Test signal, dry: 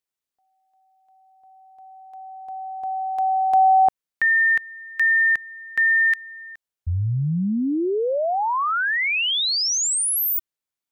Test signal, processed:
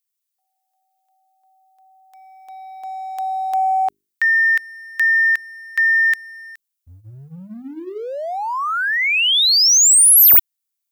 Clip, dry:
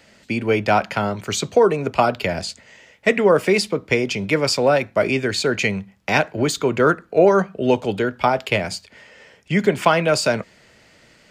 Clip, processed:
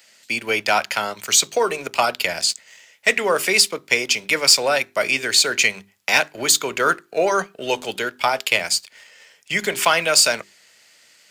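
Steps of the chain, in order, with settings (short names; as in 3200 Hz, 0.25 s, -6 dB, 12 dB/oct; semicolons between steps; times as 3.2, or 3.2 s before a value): tilt +4.5 dB/oct; notches 50/100/150/200/250/300/350/400 Hz; sample leveller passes 1; gain -4.5 dB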